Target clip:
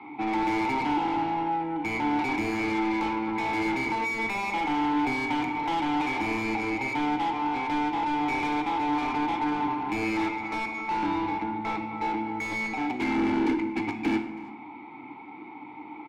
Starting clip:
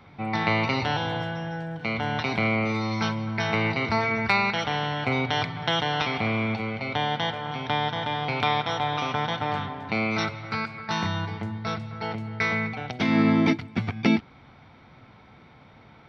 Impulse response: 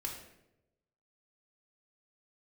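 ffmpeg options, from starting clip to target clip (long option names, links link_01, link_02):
-filter_complex "[0:a]asplit=3[link_01][link_02][link_03];[link_01]bandpass=frequency=300:width_type=q:width=8,volume=0dB[link_04];[link_02]bandpass=frequency=870:width_type=q:width=8,volume=-6dB[link_05];[link_03]bandpass=frequency=2240:width_type=q:width=8,volume=-9dB[link_06];[link_04][link_05][link_06]amix=inputs=3:normalize=0,acrossover=split=450|3000[link_07][link_08][link_09];[link_08]acompressor=threshold=-42dB:ratio=6[link_10];[link_07][link_10][link_09]amix=inputs=3:normalize=0,asplit=2[link_11][link_12];[link_12]highpass=frequency=720:poles=1,volume=28dB,asoftclip=type=tanh:threshold=-23dB[link_13];[link_11][link_13]amix=inputs=2:normalize=0,lowpass=frequency=1200:poles=1,volume=-6dB,aecho=1:1:327:0.075,asplit=2[link_14][link_15];[1:a]atrim=start_sample=2205[link_16];[link_15][link_16]afir=irnorm=-1:irlink=0,volume=0.5dB[link_17];[link_14][link_17]amix=inputs=2:normalize=0"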